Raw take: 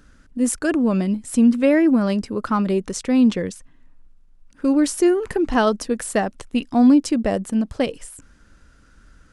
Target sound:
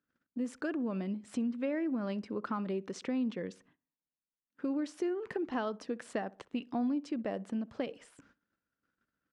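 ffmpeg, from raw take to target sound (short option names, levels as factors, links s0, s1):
-filter_complex "[0:a]highpass=170,agate=range=0.0562:threshold=0.002:ratio=16:detection=peak,lowpass=3700,acompressor=threshold=0.0398:ratio=3,asplit=2[s0][s1];[s1]adelay=62,lowpass=f=1300:p=1,volume=0.1,asplit=2[s2][s3];[s3]adelay=62,lowpass=f=1300:p=1,volume=0.42,asplit=2[s4][s5];[s5]adelay=62,lowpass=f=1300:p=1,volume=0.42[s6];[s2][s4][s6]amix=inputs=3:normalize=0[s7];[s0][s7]amix=inputs=2:normalize=0,volume=0.473"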